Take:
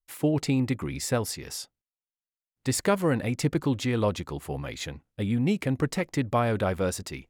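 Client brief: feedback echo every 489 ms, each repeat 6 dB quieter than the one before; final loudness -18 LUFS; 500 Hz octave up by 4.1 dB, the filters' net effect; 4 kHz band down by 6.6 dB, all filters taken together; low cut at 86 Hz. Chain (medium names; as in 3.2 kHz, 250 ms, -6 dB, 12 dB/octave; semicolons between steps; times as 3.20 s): high-pass 86 Hz; peaking EQ 500 Hz +5 dB; peaking EQ 4 kHz -9 dB; feedback delay 489 ms, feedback 50%, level -6 dB; trim +7.5 dB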